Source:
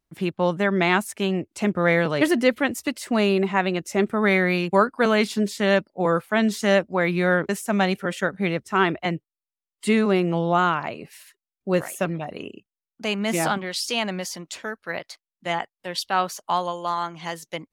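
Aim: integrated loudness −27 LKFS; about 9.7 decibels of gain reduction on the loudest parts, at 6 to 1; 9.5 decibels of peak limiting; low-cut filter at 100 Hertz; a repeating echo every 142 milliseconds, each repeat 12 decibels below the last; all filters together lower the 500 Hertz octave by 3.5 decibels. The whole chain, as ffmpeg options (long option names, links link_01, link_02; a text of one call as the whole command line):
ffmpeg -i in.wav -af "highpass=100,equalizer=frequency=500:width_type=o:gain=-4.5,acompressor=threshold=-26dB:ratio=6,alimiter=limit=-23.5dB:level=0:latency=1,aecho=1:1:142|284|426:0.251|0.0628|0.0157,volume=7dB" out.wav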